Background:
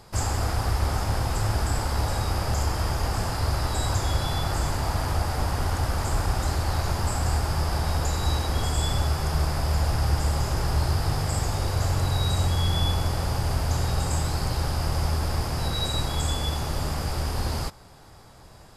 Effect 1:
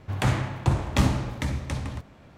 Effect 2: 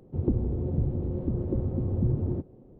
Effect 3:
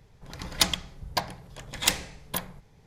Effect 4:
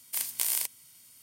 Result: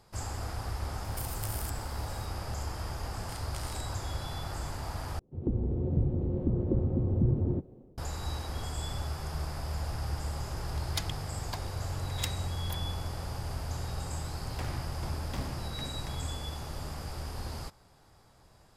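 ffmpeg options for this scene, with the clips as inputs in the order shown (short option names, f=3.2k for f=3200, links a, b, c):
-filter_complex "[4:a]asplit=2[a][b];[0:a]volume=-11dB[c];[a]acompressor=threshold=-35dB:ratio=6:attack=3.2:release=140:knee=1:detection=peak[d];[b]lowpass=6.6k[e];[2:a]dynaudnorm=f=110:g=5:m=13.5dB[f];[1:a]asoftclip=type=hard:threshold=-21dB[g];[c]asplit=2[h][i];[h]atrim=end=5.194[j];[f]atrim=end=2.79,asetpts=PTS-STARTPTS,volume=-12.5dB[k];[i]atrim=start=7.976[l];[d]atrim=end=1.22,asetpts=PTS-STARTPTS,volume=-2.5dB,afade=t=in:d=0.004:c=hsin,afade=t=out:st=1.216:d=0.004:c=hsin,adelay=1040[m];[e]atrim=end=1.22,asetpts=PTS-STARTPTS,volume=-10.5dB,afade=t=in:d=0.004:c=hsin,afade=t=out:st=1.216:d=0.004:c=hsin,adelay=3150[n];[3:a]atrim=end=2.86,asetpts=PTS-STARTPTS,volume=-13dB,afade=t=in:d=0.004:c=hsin,afade=t=out:st=2.856:d=0.004:c=hsin,adelay=10360[o];[g]atrim=end=2.37,asetpts=PTS-STARTPTS,volume=-13.5dB,afade=t=in:d=0.004:c=hsin,afade=t=out:st=2.366:d=0.004:c=hsin,adelay=14370[p];[j][k]acrossfade=d=0.004:c1=hsin:c2=hsin[q];[q][l]acrossfade=d=0.004:c1=hsin:c2=hsin[r];[r][m][n][o][p]amix=inputs=5:normalize=0"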